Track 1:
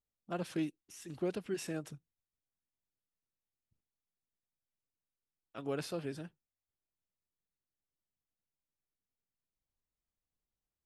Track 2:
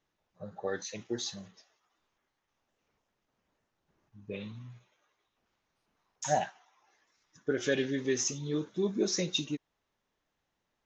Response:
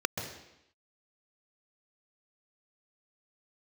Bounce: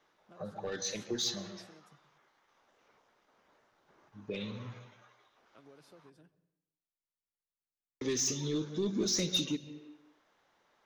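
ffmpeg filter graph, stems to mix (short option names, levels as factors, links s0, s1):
-filter_complex "[0:a]acompressor=threshold=0.00501:ratio=5,volume=0.282,asplit=2[s0][s1];[s1]volume=0.0841[s2];[1:a]asplit=2[s3][s4];[s4]highpass=f=720:p=1,volume=8.91,asoftclip=type=tanh:threshold=0.168[s5];[s3][s5]amix=inputs=2:normalize=0,lowpass=f=2200:p=1,volume=0.501,volume=1.06,asplit=3[s6][s7][s8];[s6]atrim=end=6.1,asetpts=PTS-STARTPTS,afade=t=out:st=6.096:d=0.004:c=hsin[s9];[s7]atrim=start=6.1:end=8.01,asetpts=PTS-STARTPTS,volume=0[s10];[s8]atrim=start=8.01,asetpts=PTS-STARTPTS,afade=t=in:d=0.004:c=hsin[s11];[s9][s10][s11]concat=n=3:v=0:a=1,asplit=2[s12][s13];[s13]volume=0.119[s14];[2:a]atrim=start_sample=2205[s15];[s2][s14]amix=inputs=2:normalize=0[s16];[s16][s15]afir=irnorm=-1:irlink=0[s17];[s0][s12][s17]amix=inputs=3:normalize=0,acrossover=split=260|3000[s18][s19][s20];[s19]acompressor=threshold=0.00708:ratio=4[s21];[s18][s21][s20]amix=inputs=3:normalize=0"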